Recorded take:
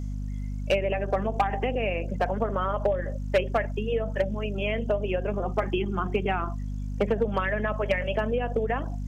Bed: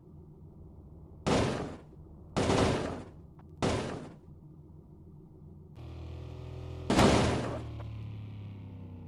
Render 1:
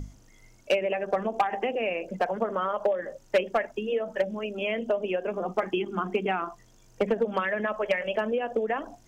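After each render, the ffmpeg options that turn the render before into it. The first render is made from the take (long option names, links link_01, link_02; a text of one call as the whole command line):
ffmpeg -i in.wav -af "bandreject=frequency=50:width_type=h:width=6,bandreject=frequency=100:width_type=h:width=6,bandreject=frequency=150:width_type=h:width=6,bandreject=frequency=200:width_type=h:width=6,bandreject=frequency=250:width_type=h:width=6" out.wav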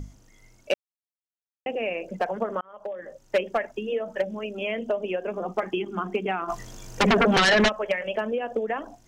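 ffmpeg -i in.wav -filter_complex "[0:a]asplit=3[link_01][link_02][link_03];[link_01]afade=type=out:start_time=6.48:duration=0.02[link_04];[link_02]aeval=exprs='0.178*sin(PI/2*3.98*val(0)/0.178)':channel_layout=same,afade=type=in:start_time=6.48:duration=0.02,afade=type=out:start_time=7.68:duration=0.02[link_05];[link_03]afade=type=in:start_time=7.68:duration=0.02[link_06];[link_04][link_05][link_06]amix=inputs=3:normalize=0,asplit=4[link_07][link_08][link_09][link_10];[link_07]atrim=end=0.74,asetpts=PTS-STARTPTS,afade=type=out:start_time=0.736:duration=0.004:curve=hsin[link_11];[link_08]atrim=start=0.74:end=1.66,asetpts=PTS-STARTPTS,volume=0[link_12];[link_09]atrim=start=1.66:end=2.61,asetpts=PTS-STARTPTS,afade=type=in:duration=0.004:curve=hsin,afade=type=out:start_time=0.946:duration=0.004:curve=hsin[link_13];[link_10]atrim=start=2.61,asetpts=PTS-STARTPTS,afade=type=in:duration=0.76[link_14];[link_11][link_12][link_13][link_14]concat=n=4:v=0:a=1" out.wav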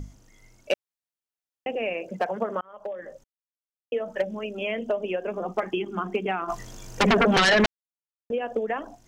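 ffmpeg -i in.wav -filter_complex "[0:a]asettb=1/sr,asplit=3[link_01][link_02][link_03];[link_01]atrim=end=1.944[link_04];[link_02]atrim=start=1.94:end=2.63,asetpts=PTS-STARTPTS,afade=type=in:duration=0.004:curve=qsin,afade=type=out:start_time=0.686:duration=0.004:curve=qsin,highpass=61[link_05];[link_03]atrim=start=2.626[link_06];[link_04][link_05]acrossfade=duration=0.004:curve1=hsin:curve2=qsin[link_07];[link_07][link_06]acrossfade=duration=0.004:curve1=qsin:curve2=hsin,asplit=5[link_08][link_09][link_10][link_11][link_12];[link_08]atrim=end=3.24,asetpts=PTS-STARTPTS,afade=type=out:start_time=3.236:duration=0.004:curve=hsin[link_13];[link_09]atrim=start=3.24:end=3.92,asetpts=PTS-STARTPTS,volume=0[link_14];[link_10]atrim=start=3.92:end=7.66,asetpts=PTS-STARTPTS,afade=type=in:duration=0.004:curve=hsin,afade=type=out:start_time=3.736:duration=0.004:curve=hsin[link_15];[link_11]atrim=start=7.66:end=8.3,asetpts=PTS-STARTPTS,volume=0[link_16];[link_12]atrim=start=8.3,asetpts=PTS-STARTPTS,afade=type=in:duration=0.004:curve=hsin[link_17];[link_13][link_14][link_15][link_16][link_17]concat=n=5:v=0:a=1" out.wav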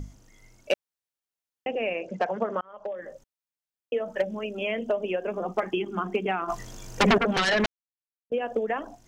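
ffmpeg -i in.wav -filter_complex "[0:a]asettb=1/sr,asplit=3[link_01][link_02][link_03];[link_01]atrim=end=1.684[link_04];[link_02]atrim=start=1.68:end=2.92,asetpts=PTS-STARTPTS,afade=type=in:duration=0.004:curve=qsin,afade=type=out:start_time=1.236:duration=0.004:curve=qsin,lowpass=frequency=7100:width=0.5412,lowpass=frequency=7100:width=1.3066[link_05];[link_03]atrim=start=2.916[link_06];[link_04][link_05]acrossfade=duration=0.004:curve1=hsin:curve2=qsin[link_07];[link_07][link_06]acrossfade=duration=0.004:curve1=qsin:curve2=hsin,asettb=1/sr,asplit=3[link_08][link_09][link_10];[link_08]atrim=end=7.184[link_11];[link_09]atrim=start=7.18:end=8.32,asetpts=PTS-STARTPTS,afade=type=in:duration=0.004:curve=qsin,afade=type=out:start_time=1.136:duration=0.004:curve=qsin,agate=range=-33dB:threshold=-15dB:ratio=3:release=100:detection=peak[link_12];[link_10]atrim=start=8.316[link_13];[link_11][link_12]acrossfade=duration=0.004:curve1=hsin:curve2=qsin[link_14];[link_14][link_13]acrossfade=duration=0.004:curve1=qsin:curve2=hsin" out.wav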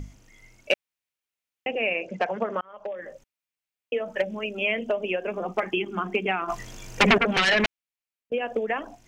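ffmpeg -i in.wav -af "equalizer=frequency=2400:width_type=o:width=0.81:gain=8" out.wav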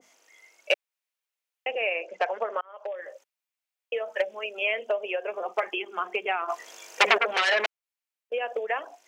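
ffmpeg -i in.wav -af "highpass=frequency=460:width=0.5412,highpass=frequency=460:width=1.3066,adynamicequalizer=threshold=0.0141:dfrequency=1700:dqfactor=0.7:tfrequency=1700:tqfactor=0.7:attack=5:release=100:ratio=0.375:range=3:mode=cutabove:tftype=highshelf" out.wav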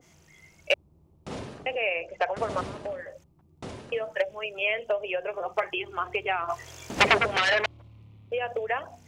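ffmpeg -i in.wav -i bed.wav -filter_complex "[1:a]volume=-9.5dB[link_01];[0:a][link_01]amix=inputs=2:normalize=0" out.wav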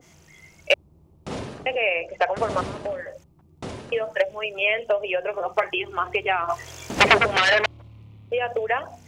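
ffmpeg -i in.wav -af "volume=5dB,alimiter=limit=-2dB:level=0:latency=1" out.wav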